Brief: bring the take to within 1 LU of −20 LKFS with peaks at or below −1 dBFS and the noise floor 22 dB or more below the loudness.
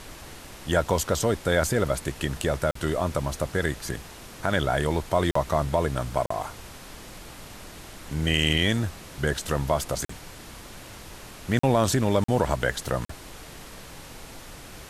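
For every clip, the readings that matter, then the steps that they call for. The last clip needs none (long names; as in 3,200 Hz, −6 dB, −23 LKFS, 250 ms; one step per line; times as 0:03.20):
number of dropouts 7; longest dropout 44 ms; background noise floor −44 dBFS; target noise floor −48 dBFS; integrated loudness −26.0 LKFS; sample peak −8.0 dBFS; target loudness −20.0 LKFS
→ repair the gap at 0:02.71/0:05.31/0:06.26/0:10.05/0:11.59/0:12.24/0:13.05, 44 ms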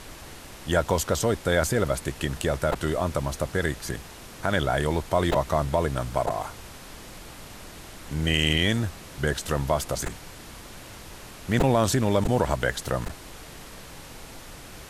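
number of dropouts 0; background noise floor −44 dBFS; target noise floor −48 dBFS
→ noise reduction from a noise print 6 dB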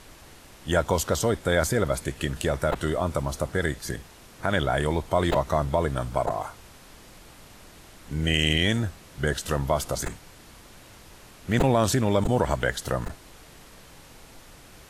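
background noise floor −50 dBFS; integrated loudness −26.0 LKFS; sample peak −8.0 dBFS; target loudness −20.0 LKFS
→ level +6 dB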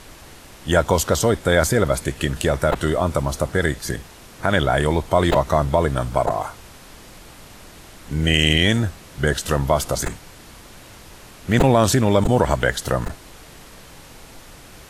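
integrated loudness −20.0 LKFS; sample peak −2.0 dBFS; background noise floor −44 dBFS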